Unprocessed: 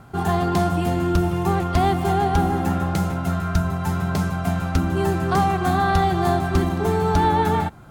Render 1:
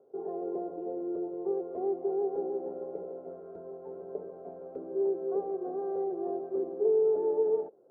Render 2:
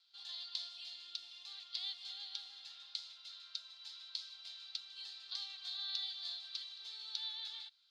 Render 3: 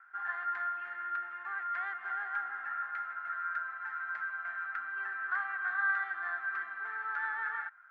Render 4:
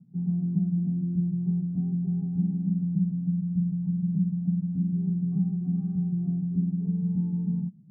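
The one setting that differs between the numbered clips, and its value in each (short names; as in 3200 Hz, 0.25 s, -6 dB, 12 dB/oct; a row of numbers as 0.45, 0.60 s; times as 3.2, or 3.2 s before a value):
Butterworth band-pass, frequency: 460, 4100, 1600, 180 Hz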